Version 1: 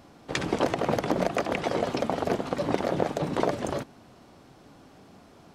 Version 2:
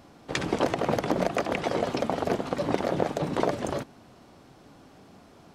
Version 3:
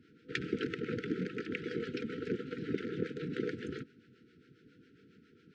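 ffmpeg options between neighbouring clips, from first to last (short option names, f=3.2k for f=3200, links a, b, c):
-af anull
-filter_complex "[0:a]highpass=110,lowpass=3.2k,acrossover=split=430[a][b];[a]aeval=exprs='val(0)*(1-0.7/2+0.7/2*cos(2*PI*7.3*n/s))':c=same[c];[b]aeval=exprs='val(0)*(1-0.7/2-0.7/2*cos(2*PI*7.3*n/s))':c=same[d];[c][d]amix=inputs=2:normalize=0,afftfilt=real='re*(1-between(b*sr/4096,500,1300))':imag='im*(1-between(b*sr/4096,500,1300))':win_size=4096:overlap=0.75,volume=-3.5dB"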